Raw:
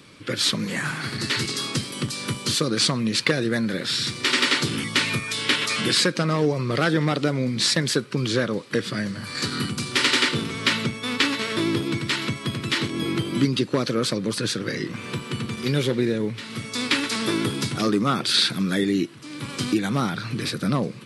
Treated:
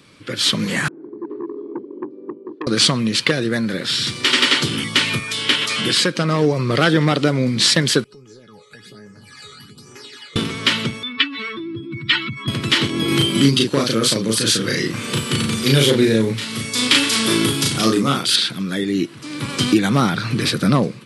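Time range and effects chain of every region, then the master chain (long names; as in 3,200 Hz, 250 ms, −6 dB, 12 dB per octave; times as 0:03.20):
0:00.88–0:02.67: flat-topped band-pass 360 Hz, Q 3 + saturating transformer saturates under 1,300 Hz
0:08.04–0:10.36: all-pass phaser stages 12, 1.2 Hz, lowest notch 270–4,000 Hz + downward compressor 4 to 1, threshold −35 dBFS + tuned comb filter 420 Hz, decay 0.18 s, mix 90%
0:11.03–0:12.48: expanding power law on the bin magnitudes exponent 2.2 + low shelf with overshoot 770 Hz −8 dB, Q 1.5
0:13.08–0:18.36: high-shelf EQ 5,600 Hz +11 dB + double-tracking delay 36 ms −2.5 dB
whole clip: dynamic equaliser 3,100 Hz, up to +7 dB, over −42 dBFS, Q 5.9; automatic gain control; level −1 dB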